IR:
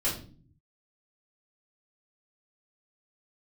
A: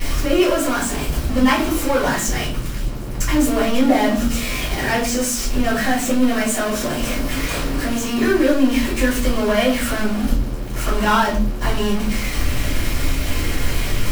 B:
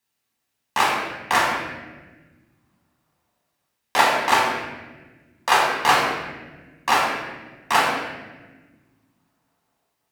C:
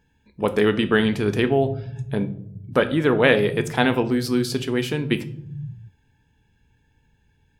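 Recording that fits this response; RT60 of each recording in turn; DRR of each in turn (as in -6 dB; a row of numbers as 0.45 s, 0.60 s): A; 0.45 s, 1.3 s, 0.70 s; -9.5 dB, -4.0 dB, 9.5 dB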